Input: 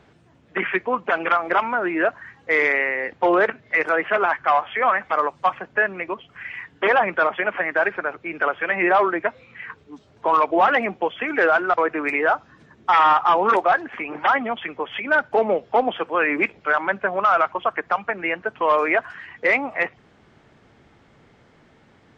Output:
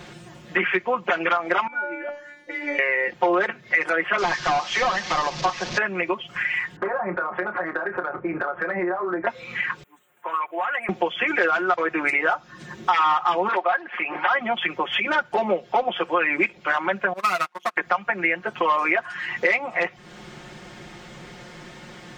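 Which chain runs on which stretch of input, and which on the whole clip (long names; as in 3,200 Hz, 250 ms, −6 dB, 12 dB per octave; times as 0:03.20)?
0:01.67–0:02.79: parametric band 310 Hz +10.5 dB 1.4 octaves + compressor whose output falls as the input rises −18 dBFS, ratio −0.5 + tuned comb filter 290 Hz, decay 0.56 s, mix 100%
0:04.18–0:05.78: linear delta modulator 32 kbit/s, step −32.5 dBFS + notch filter 1,400 Hz, Q 14
0:06.76–0:09.27: inverse Chebyshev low-pass filter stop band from 4,900 Hz, stop band 60 dB + downward compressor, threshold −32 dBFS + double-tracking delay 28 ms −9.5 dB
0:09.83–0:10.89: Butterworth band-reject 5,000 Hz, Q 0.53 + first difference
0:13.48–0:14.31: high-pass filter 730 Hz 6 dB per octave + high-frequency loss of the air 260 metres
0:17.13–0:17.77: gain on one half-wave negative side −12 dB + high-pass filter 240 Hz + expander for the loud parts 2.5 to 1, over −33 dBFS
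whole clip: high-shelf EQ 3,200 Hz +11 dB; comb filter 5.6 ms, depth 96%; downward compressor 3 to 1, threshold −33 dBFS; level +9 dB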